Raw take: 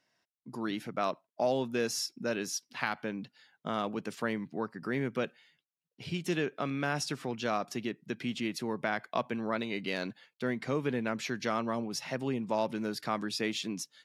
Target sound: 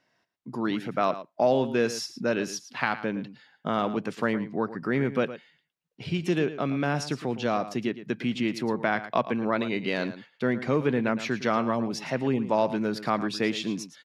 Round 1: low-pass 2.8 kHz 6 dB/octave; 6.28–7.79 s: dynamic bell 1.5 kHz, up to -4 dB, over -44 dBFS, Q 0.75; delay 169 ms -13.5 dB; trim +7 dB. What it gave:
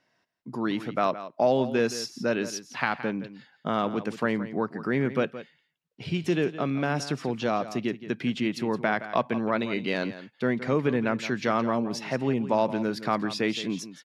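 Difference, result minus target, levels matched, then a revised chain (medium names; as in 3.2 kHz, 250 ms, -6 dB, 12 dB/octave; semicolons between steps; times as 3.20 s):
echo 57 ms late
low-pass 2.8 kHz 6 dB/octave; 6.28–7.79 s: dynamic bell 1.5 kHz, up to -4 dB, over -44 dBFS, Q 0.75; delay 112 ms -13.5 dB; trim +7 dB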